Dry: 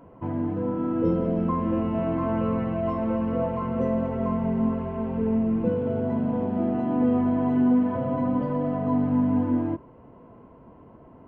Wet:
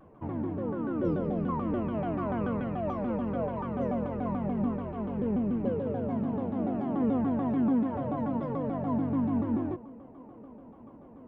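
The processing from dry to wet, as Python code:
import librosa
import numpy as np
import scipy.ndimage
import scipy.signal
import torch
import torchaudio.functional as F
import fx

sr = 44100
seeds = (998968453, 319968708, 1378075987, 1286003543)

p1 = x + fx.echo_wet_bandpass(x, sr, ms=658, feedback_pct=79, hz=470.0, wet_db=-21.0, dry=0)
p2 = fx.vibrato_shape(p1, sr, shape='saw_down', rate_hz=6.9, depth_cents=250.0)
y = F.gain(torch.from_numpy(p2), -5.5).numpy()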